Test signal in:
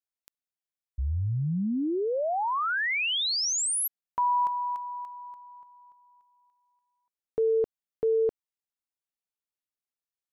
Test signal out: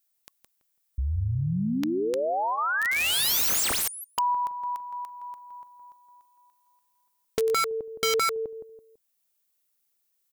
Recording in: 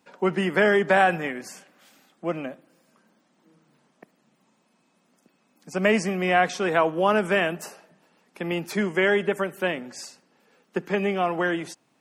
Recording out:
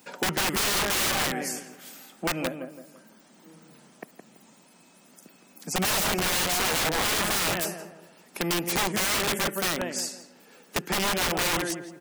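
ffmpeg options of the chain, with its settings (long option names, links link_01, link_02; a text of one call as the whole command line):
ffmpeg -i in.wav -filter_complex "[0:a]aemphasis=mode=production:type=50kf,bandreject=frequency=1100:width=22,asplit=2[link_01][link_02];[link_02]adelay=166,lowpass=frequency=1500:poles=1,volume=-7dB,asplit=2[link_03][link_04];[link_04]adelay=166,lowpass=frequency=1500:poles=1,volume=0.31,asplit=2[link_05][link_06];[link_06]adelay=166,lowpass=frequency=1500:poles=1,volume=0.31,asplit=2[link_07][link_08];[link_08]adelay=166,lowpass=frequency=1500:poles=1,volume=0.31[link_09];[link_03][link_05][link_07][link_09]amix=inputs=4:normalize=0[link_10];[link_01][link_10]amix=inputs=2:normalize=0,aeval=exprs='(mod(10.6*val(0)+1,2)-1)/10.6':channel_layout=same,acompressor=threshold=-46dB:ratio=1.5:attack=36:release=598:detection=rms,volume=8dB" out.wav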